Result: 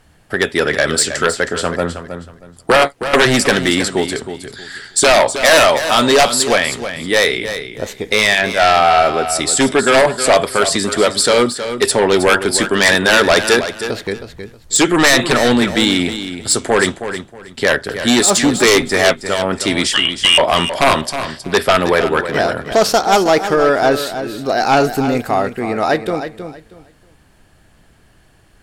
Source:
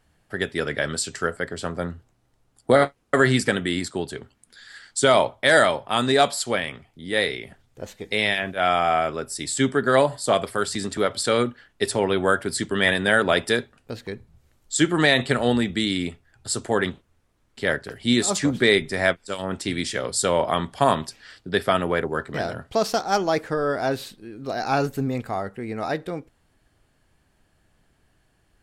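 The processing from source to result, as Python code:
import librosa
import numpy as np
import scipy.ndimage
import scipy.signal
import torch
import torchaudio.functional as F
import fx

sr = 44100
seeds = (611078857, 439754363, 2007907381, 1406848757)

y = fx.freq_invert(x, sr, carrier_hz=3400, at=(19.93, 20.38))
y = fx.fold_sine(y, sr, drive_db=10, ceiling_db=-4.0)
y = fx.echo_feedback(y, sr, ms=317, feedback_pct=22, wet_db=-10.5)
y = fx.dynamic_eq(y, sr, hz=120.0, q=0.82, threshold_db=-30.0, ratio=4.0, max_db=-8)
y = y * 10.0 ** (-1.0 / 20.0)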